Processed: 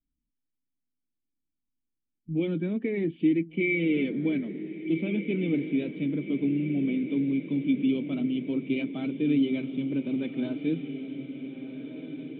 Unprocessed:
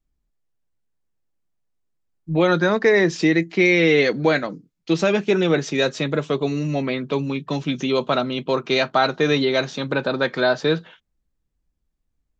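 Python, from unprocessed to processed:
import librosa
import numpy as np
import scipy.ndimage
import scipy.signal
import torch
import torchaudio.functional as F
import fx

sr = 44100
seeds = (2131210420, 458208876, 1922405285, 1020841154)

y = fx.spec_quant(x, sr, step_db=15)
y = fx.formant_cascade(y, sr, vowel='i')
y = fx.echo_diffused(y, sr, ms=1531, feedback_pct=56, wet_db=-10)
y = y * 10.0 ** (1.5 / 20.0)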